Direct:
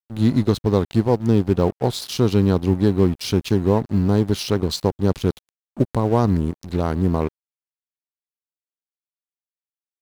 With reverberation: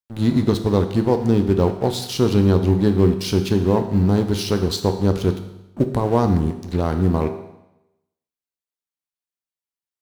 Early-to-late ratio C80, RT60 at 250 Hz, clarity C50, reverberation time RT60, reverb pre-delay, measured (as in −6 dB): 11.5 dB, 0.90 s, 9.5 dB, 0.90 s, 10 ms